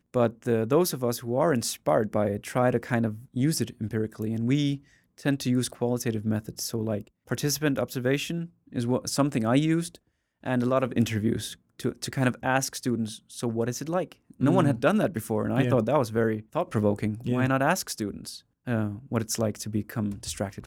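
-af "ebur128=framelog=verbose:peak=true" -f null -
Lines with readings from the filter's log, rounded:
Integrated loudness:
  I:         -27.2 LUFS
  Threshold: -37.4 LUFS
Loudness range:
  LRA:         3.3 LU
  Threshold: -47.4 LUFS
  LRA low:   -29.0 LUFS
  LRA high:  -25.7 LUFS
True peak:
  Peak:       -7.9 dBFS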